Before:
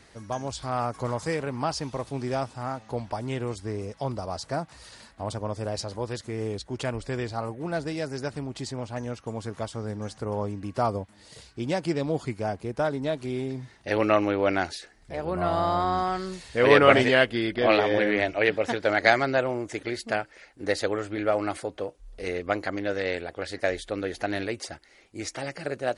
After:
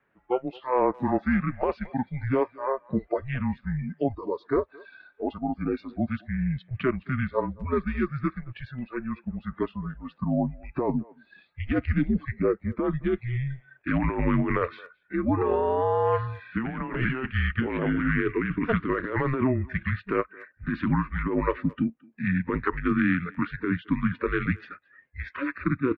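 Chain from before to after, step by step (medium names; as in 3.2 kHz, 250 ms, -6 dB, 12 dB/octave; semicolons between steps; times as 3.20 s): spectral noise reduction 22 dB; mistuned SSB -260 Hz 390–2700 Hz; compressor with a negative ratio -29 dBFS, ratio -1; dynamic bell 1.8 kHz, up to -3 dB, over -48 dBFS, Q 0.91; speakerphone echo 220 ms, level -23 dB; trim +5.5 dB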